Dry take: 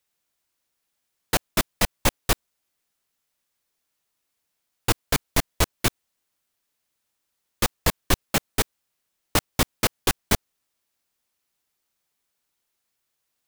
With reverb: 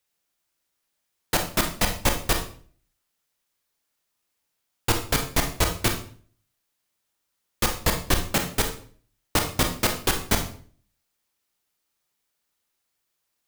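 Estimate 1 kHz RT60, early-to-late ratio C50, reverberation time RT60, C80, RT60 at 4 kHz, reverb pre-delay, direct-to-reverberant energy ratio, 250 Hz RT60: 0.45 s, 9.0 dB, 0.45 s, 13.0 dB, 0.40 s, 27 ms, 4.0 dB, 0.60 s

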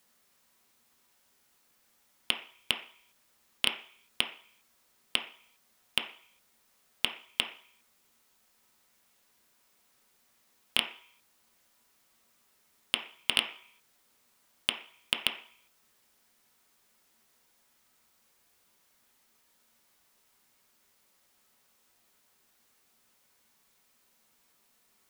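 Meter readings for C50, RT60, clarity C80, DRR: 8.5 dB, 0.50 s, 13.0 dB, 2.0 dB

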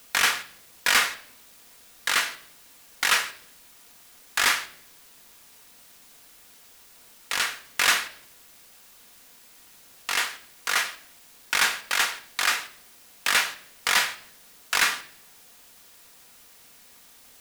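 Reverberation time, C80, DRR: 0.75 s, 18.5 dB, 8.0 dB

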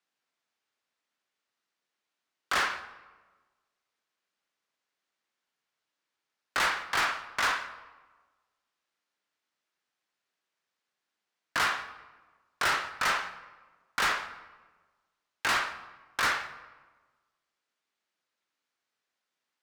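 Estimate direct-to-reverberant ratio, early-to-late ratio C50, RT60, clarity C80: 10.0 dB, 12.5 dB, 1.3 s, 14.0 dB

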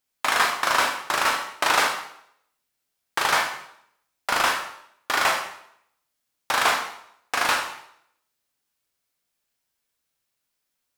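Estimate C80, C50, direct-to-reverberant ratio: 9.0 dB, 5.5 dB, 1.0 dB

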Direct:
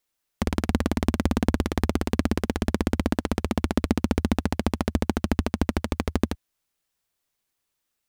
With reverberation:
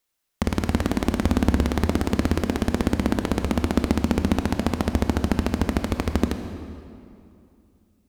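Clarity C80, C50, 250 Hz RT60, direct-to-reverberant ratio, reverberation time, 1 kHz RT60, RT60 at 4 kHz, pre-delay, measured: 9.0 dB, 8.0 dB, 2.9 s, 7.0 dB, 2.6 s, 2.5 s, 1.8 s, 20 ms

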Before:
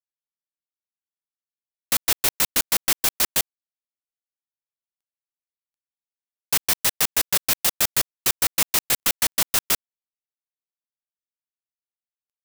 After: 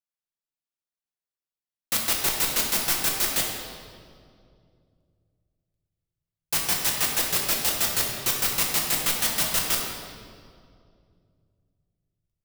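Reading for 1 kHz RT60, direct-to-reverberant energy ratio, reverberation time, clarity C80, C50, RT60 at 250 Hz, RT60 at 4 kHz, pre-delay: 2.0 s, −2.0 dB, 2.3 s, 3.5 dB, 2.0 dB, 3.0 s, 1.6 s, 6 ms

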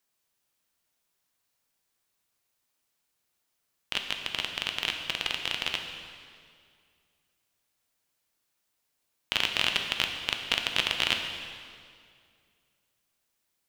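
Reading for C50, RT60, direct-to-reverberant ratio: 5.5 dB, 2.2 s, 3.5 dB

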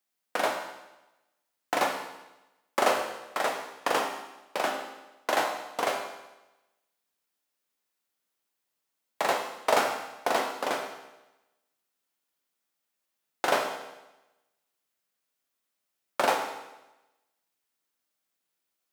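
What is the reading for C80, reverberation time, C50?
7.5 dB, 1.0 s, 5.5 dB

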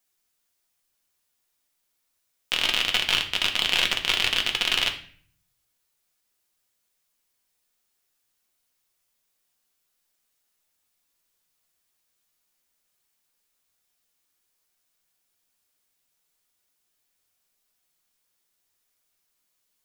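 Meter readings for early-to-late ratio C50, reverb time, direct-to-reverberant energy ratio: 11.0 dB, 0.50 s, 2.5 dB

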